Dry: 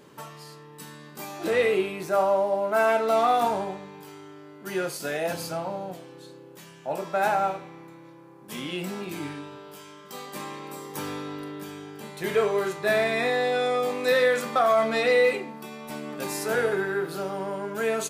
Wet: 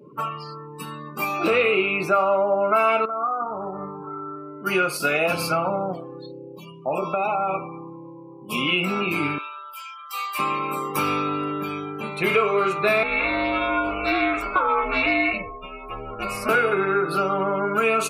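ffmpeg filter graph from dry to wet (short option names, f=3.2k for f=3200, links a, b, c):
-filter_complex "[0:a]asettb=1/sr,asplit=3[a][b][c];[a]atrim=end=3.054[d];[b]atrim=start=3.05:end=4.36,asetpts=PTS-STARTPTS,afade=t=in:d=0.004:c=qsin,afade=t=out:st=1.306:d=0.004:c=qsin,lowpass=f=1.9k:w=0.5412,lowpass=f=1.9k:w=1.3066,equalizer=f=1.3k:w=5.6:g=3.5,acompressor=threshold=-35dB:ratio=8:attack=3.2:release=140:knee=1:detection=peak[e];[c]atrim=start=4.356[f];[d][e]acrossfade=d=0.004:c1=hsin:c2=qsin[g];[g][f]acrossfade=d=0.004:c1=qsin:c2=hsin,asettb=1/sr,asplit=3[h][i][j];[h]atrim=end=6.274[k];[i]atrim=start=6.27:end=8.67,asetpts=PTS-STARTPTS,afade=t=in:d=0.004:c=qsin,afade=t=out:st=2.396:d=0.004:c=qsin,acompressor=threshold=-27dB:ratio=8:attack=3.2:release=140:knee=1:detection=peak,asuperstop=centerf=1700:order=4:qfactor=1.5[l];[j]atrim=start=8.666[m];[k][l]acrossfade=d=0.004:c1=hsin:c2=qsin[n];[n][m]acrossfade=d=0.004:c1=qsin:c2=hsin,asettb=1/sr,asplit=3[o][p][q];[o]atrim=end=9.384[r];[p]atrim=start=9.38:end=10.39,asetpts=PTS-STARTPTS,afade=t=in:d=0.004:c=qsin,afade=t=out:st=1.006:d=0.004:c=qsin,highpass=1.1k,highshelf=f=5.5k:g=5,asoftclip=type=hard:threshold=-36dB[s];[q]atrim=start=10.386[t];[r][s]acrossfade=d=0.004:c1=hsin:c2=qsin[u];[u][t]acrossfade=d=0.004:c1=qsin:c2=hsin,asettb=1/sr,asplit=3[v][w][x];[v]atrim=end=13.034[y];[w]atrim=start=13.03:end=16.49,asetpts=PTS-STARTPTS,afade=t=in:d=0.004:c=qsin,afade=t=out:st=3.456:d=0.004:c=qsin,aeval=exprs='val(0)*sin(2*PI*190*n/s)':c=same,flanger=delay=4.2:depth=1.3:regen=-78:speed=1.2:shape=triangular[z];[x]atrim=start=16.486[aa];[y][z]acrossfade=d=0.004:c1=hsin:c2=qsin[ab];[ab][aa]acrossfade=d=0.004:c1=qsin:c2=hsin,afftdn=nr=35:nf=-46,superequalizer=10b=3.16:11b=0.631:12b=3.55:15b=0.562,acompressor=threshold=-27dB:ratio=3,volume=8.5dB"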